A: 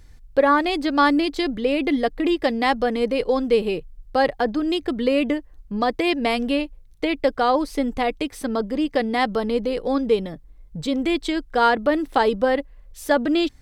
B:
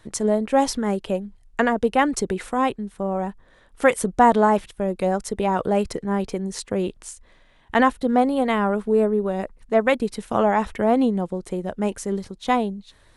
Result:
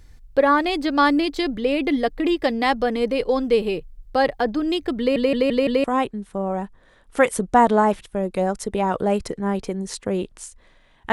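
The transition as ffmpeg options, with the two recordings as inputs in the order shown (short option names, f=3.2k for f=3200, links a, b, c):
-filter_complex "[0:a]apad=whole_dur=11.12,atrim=end=11.12,asplit=5[a][b][c][d][e];[a]atrim=end=5.162[f];[b]atrim=start=4.988:end=5.162[g];[c]atrim=start=4.988:end=5.162[h];[d]atrim=start=4.988:end=5.162[i];[e]atrim=start=4.988:end=5.162[j];[1:a]atrim=start=2.488:end=7.77[k];[f][g]acrossfade=d=0.004:c1=hsin:c2=hsin[l];[l][h]acrossfade=d=0.004:c1=hsin:c2=hsin[m];[m][i]acrossfade=d=0.004:c1=hsin:c2=hsin[n];[n][j]acrossfade=d=0.004:c1=hsin:c2=hsin[o];[o][k]acrossfade=d=0.004:c1=hsin:c2=hsin"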